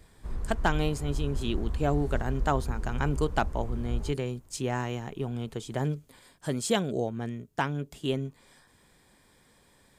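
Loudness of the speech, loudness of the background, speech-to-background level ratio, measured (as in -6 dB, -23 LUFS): -31.5 LUFS, -36.5 LUFS, 5.0 dB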